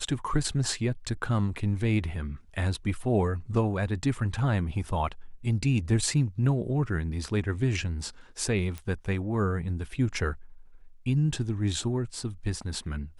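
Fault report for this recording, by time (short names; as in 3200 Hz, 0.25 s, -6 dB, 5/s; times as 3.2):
8.78 pop -23 dBFS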